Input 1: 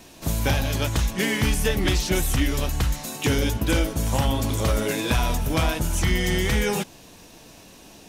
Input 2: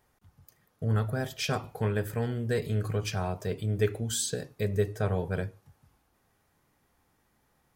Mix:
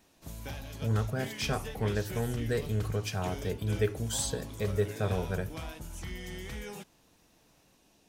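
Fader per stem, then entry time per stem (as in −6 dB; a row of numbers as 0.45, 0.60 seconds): −18.5, −2.0 decibels; 0.00, 0.00 seconds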